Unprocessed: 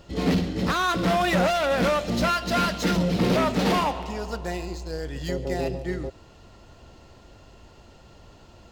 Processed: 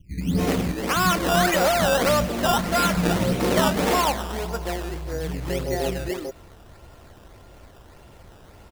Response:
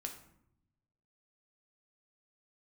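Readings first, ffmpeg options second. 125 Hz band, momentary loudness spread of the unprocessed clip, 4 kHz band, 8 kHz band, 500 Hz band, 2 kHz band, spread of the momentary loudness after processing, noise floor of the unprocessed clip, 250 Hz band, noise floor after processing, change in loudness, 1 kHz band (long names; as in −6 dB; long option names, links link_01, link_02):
+1.5 dB, 11 LU, +3.0 dB, +8.5 dB, +2.5 dB, +2.5 dB, 11 LU, −51 dBFS, +0.5 dB, −49 dBFS, +2.0 dB, +2.5 dB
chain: -filter_complex "[0:a]acrossover=split=230|4200[link_01][link_02][link_03];[link_02]adelay=210[link_04];[link_03]adelay=330[link_05];[link_01][link_04][link_05]amix=inputs=3:normalize=0,acrusher=samples=14:mix=1:aa=0.000001:lfo=1:lforange=14:lforate=1.7,volume=3dB"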